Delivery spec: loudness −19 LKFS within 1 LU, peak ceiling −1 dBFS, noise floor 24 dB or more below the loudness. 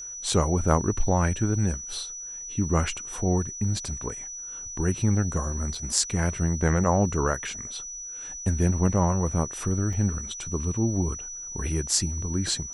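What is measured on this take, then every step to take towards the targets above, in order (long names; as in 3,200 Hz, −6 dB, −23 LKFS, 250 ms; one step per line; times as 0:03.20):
number of dropouts 2; longest dropout 3.3 ms; interfering tone 5,900 Hz; level of the tone −35 dBFS; integrated loudness −26.5 LKFS; sample peak −3.5 dBFS; target loudness −19.0 LKFS
→ repair the gap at 0:05.75/0:09.93, 3.3 ms
notch filter 5,900 Hz, Q 30
level +7.5 dB
brickwall limiter −1 dBFS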